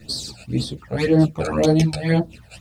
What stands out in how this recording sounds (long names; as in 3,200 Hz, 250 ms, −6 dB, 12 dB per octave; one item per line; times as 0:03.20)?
phaser sweep stages 12, 1.9 Hz, lowest notch 320–2,500 Hz
a quantiser's noise floor 12 bits, dither triangular
a shimmering, thickened sound